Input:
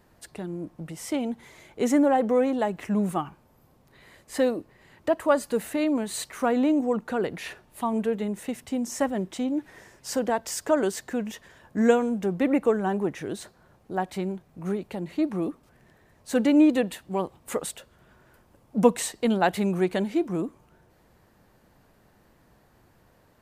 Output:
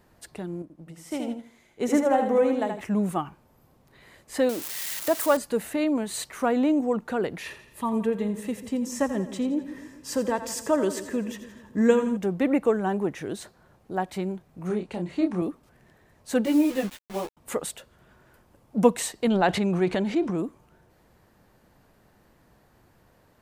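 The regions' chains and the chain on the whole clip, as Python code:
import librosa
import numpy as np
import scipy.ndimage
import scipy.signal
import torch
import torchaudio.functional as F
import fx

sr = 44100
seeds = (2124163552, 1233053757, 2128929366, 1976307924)

y = fx.chain(x, sr, fx.echo_feedback(ms=78, feedback_pct=36, wet_db=-4.0),
    fx.upward_expand(threshold_db=-39.0, expansion=1.5), at=(0.62, 2.81))
y = fx.chain(y, sr, fx.crossing_spikes(level_db=-21.5),
    fx.low_shelf(hz=74.0, db=-12.0), at=(4.49, 5.37))
y = fx.chain(y, sr, fx.low_shelf(hz=66.0, db=11.5),
    fx.notch_comb(f0_hz=730.0),
    fx.echo_split(split_hz=480.0, low_ms=140, high_ms=85, feedback_pct=52, wet_db=-12.0), at=(7.42, 12.17))
y = fx.chain(y, sr, fx.lowpass(hz=9700.0, slope=24),
    fx.doubler(ms=28.0, db=-5.0), at=(14.67, 15.42))
y = fx.chain(y, sr, fx.peak_eq(hz=8000.0, db=-11.0, octaves=0.98),
    fx.quant_dither(seeds[0], bits=6, dither='none'),
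    fx.ensemble(), at=(16.45, 17.37))
y = fx.chain(y, sr, fx.lowpass(hz=6400.0, slope=12),
    fx.transient(attack_db=0, sustain_db=8), at=(19.27, 20.38))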